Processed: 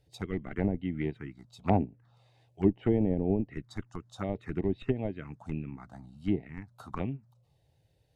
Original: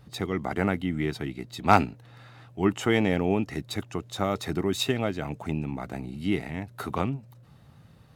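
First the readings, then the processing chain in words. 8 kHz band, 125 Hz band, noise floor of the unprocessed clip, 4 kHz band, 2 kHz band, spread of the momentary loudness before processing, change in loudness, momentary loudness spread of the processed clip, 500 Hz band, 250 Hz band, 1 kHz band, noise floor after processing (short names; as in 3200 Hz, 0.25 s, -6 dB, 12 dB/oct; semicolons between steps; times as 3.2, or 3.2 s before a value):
under -15 dB, -3.0 dB, -54 dBFS, -18.5 dB, -13.5 dB, 12 LU, -4.5 dB, 16 LU, -4.5 dB, -3.0 dB, -11.5 dB, -69 dBFS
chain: in parallel at -7 dB: Schmitt trigger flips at -19 dBFS; on the sum: treble ducked by the level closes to 680 Hz, closed at -19 dBFS; envelope phaser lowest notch 190 Hz, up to 1300 Hz, full sweep at -23 dBFS; upward expander 1.5:1, over -41 dBFS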